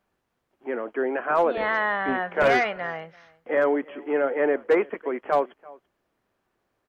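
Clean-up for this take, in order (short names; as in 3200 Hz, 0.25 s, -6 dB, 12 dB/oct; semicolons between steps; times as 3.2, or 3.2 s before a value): clip repair -12.5 dBFS; inverse comb 0.337 s -23 dB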